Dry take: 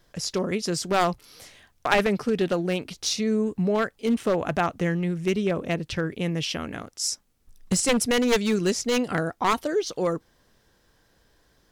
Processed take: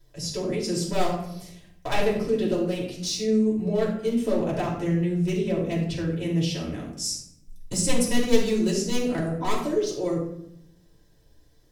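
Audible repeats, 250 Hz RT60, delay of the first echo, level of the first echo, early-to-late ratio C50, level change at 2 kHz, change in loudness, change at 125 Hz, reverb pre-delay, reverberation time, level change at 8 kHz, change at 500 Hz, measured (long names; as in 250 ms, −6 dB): no echo audible, 1.1 s, no echo audible, no echo audible, 4.5 dB, −6.5 dB, −0.5 dB, +2.0 dB, 3 ms, 0.75 s, −1.5 dB, −0.5 dB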